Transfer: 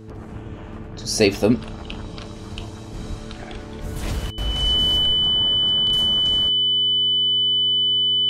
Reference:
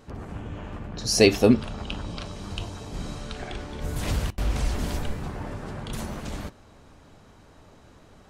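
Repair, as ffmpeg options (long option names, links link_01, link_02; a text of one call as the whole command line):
ffmpeg -i in.wav -filter_complex "[0:a]bandreject=frequency=109:width_type=h:width=4,bandreject=frequency=218:width_type=h:width=4,bandreject=frequency=327:width_type=h:width=4,bandreject=frequency=436:width_type=h:width=4,bandreject=frequency=3000:width=30,asplit=3[link_01][link_02][link_03];[link_01]afade=type=out:start_time=3.09:duration=0.02[link_04];[link_02]highpass=frequency=140:width=0.5412,highpass=frequency=140:width=1.3066,afade=type=in:start_time=3.09:duration=0.02,afade=type=out:start_time=3.21:duration=0.02[link_05];[link_03]afade=type=in:start_time=3.21:duration=0.02[link_06];[link_04][link_05][link_06]amix=inputs=3:normalize=0,asplit=3[link_07][link_08][link_09];[link_07]afade=type=out:start_time=4.02:duration=0.02[link_10];[link_08]highpass=frequency=140:width=0.5412,highpass=frequency=140:width=1.3066,afade=type=in:start_time=4.02:duration=0.02,afade=type=out:start_time=4.14:duration=0.02[link_11];[link_09]afade=type=in:start_time=4.14:duration=0.02[link_12];[link_10][link_11][link_12]amix=inputs=3:normalize=0" out.wav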